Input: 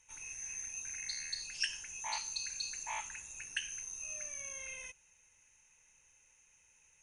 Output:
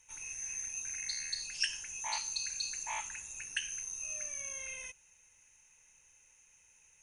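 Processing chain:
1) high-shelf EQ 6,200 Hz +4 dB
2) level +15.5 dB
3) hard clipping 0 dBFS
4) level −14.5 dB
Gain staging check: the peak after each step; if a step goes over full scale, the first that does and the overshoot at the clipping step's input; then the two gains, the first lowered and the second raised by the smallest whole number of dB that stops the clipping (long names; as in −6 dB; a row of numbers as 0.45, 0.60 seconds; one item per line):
−19.5, −4.0, −4.0, −18.5 dBFS
no step passes full scale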